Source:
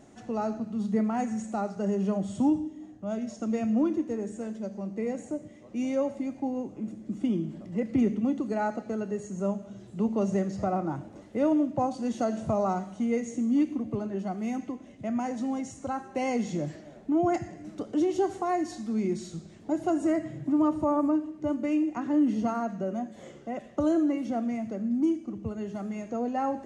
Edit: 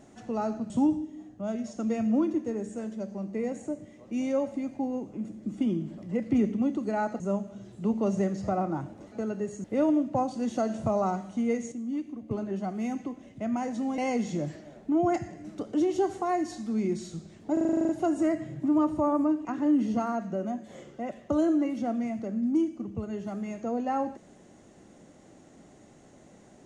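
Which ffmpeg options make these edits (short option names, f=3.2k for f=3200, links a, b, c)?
-filter_complex "[0:a]asplit=18[a][b][c][d][e][f][g][h][i][j][k][l][m][n][o][p][q][r];[a]atrim=end=0.702[s];[b]atrim=start=2.328:end=8.832[t];[c]atrim=start=9.348:end=11.272[u];[d]atrim=start=8.828:end=9.352[v];[e]atrim=start=11.268:end=13.352[w];[f]atrim=start=13.348:end=13.942,asetpts=PTS-STARTPTS,volume=-8dB[x];[g]atrim=start=13.938:end=15.612[y];[h]atrim=start=16.178:end=19.772[z];[i]atrim=start=19.728:end=19.772[aa];[j]atrim=start=19.728:end=19.772[ab];[k]atrim=start=19.728:end=19.772[ac];[l]atrim=start=19.728:end=19.772[ad];[m]atrim=start=19.728:end=19.772[ae];[n]atrim=start=19.728:end=19.772[af];[o]atrim=start=19.728:end=19.772[ag];[p]atrim=start=19.728:end=19.772[ah];[q]atrim=start=19.728:end=21.292[ai];[r]atrim=start=21.928[aj];[s][t]acrossfade=d=0.004:c1=hsin:c2=hsin[ak];[ak][u]acrossfade=d=0.004:c1=hsin:c2=hsin[al];[al][v]acrossfade=d=0.004:c1=hsin:c2=hsin[am];[am][w]acrossfade=d=0.004:c1=hsin:c2=hsin[an];[an][x]acrossfade=d=0.004:c1=hsin:c2=hsin[ao];[ao][y]acrossfade=d=0.004:c1=hsin:c2=hsin[ap];[ap][z]acrossfade=d=0.004:c1=hsin:c2=hsin[aq];[aq][aa]acrossfade=d=0.004:c1=hsin:c2=hsin[ar];[ar][ab]acrossfade=d=0.004:c1=hsin:c2=hsin[as];[as][ac]acrossfade=d=0.004:c1=hsin:c2=hsin[at];[at][ad]acrossfade=d=0.004:c1=hsin:c2=hsin[au];[au][ae]acrossfade=d=0.004:c1=hsin:c2=hsin[av];[av][af]acrossfade=d=0.004:c1=hsin:c2=hsin[aw];[aw][ag]acrossfade=d=0.004:c1=hsin:c2=hsin[ax];[ax][ah]acrossfade=d=0.004:c1=hsin:c2=hsin[ay];[ay][ai]acrossfade=d=0.004:c1=hsin:c2=hsin[az];[az][aj]acrossfade=d=0.004:c1=hsin:c2=hsin"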